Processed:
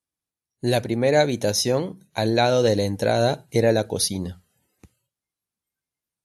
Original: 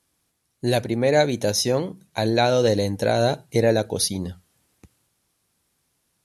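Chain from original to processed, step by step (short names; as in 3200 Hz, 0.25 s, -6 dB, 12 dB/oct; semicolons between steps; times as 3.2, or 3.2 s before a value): spectral noise reduction 19 dB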